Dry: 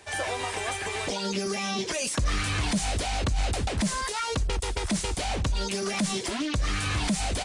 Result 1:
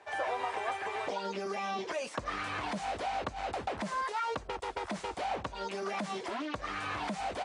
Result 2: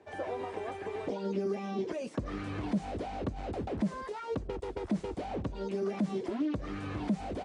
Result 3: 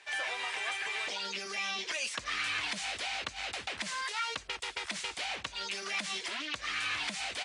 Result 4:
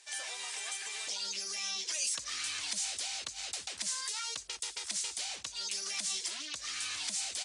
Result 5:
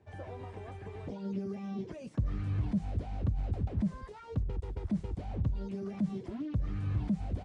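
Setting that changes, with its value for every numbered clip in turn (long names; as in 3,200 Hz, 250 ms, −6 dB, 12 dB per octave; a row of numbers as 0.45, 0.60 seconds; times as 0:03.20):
resonant band-pass, frequency: 870, 330, 2,400, 6,300, 120 Hertz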